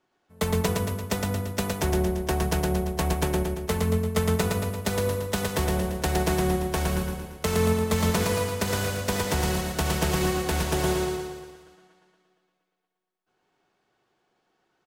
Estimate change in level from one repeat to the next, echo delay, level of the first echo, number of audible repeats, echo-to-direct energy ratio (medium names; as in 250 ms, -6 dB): -5.5 dB, 114 ms, -3.5 dB, 6, -2.0 dB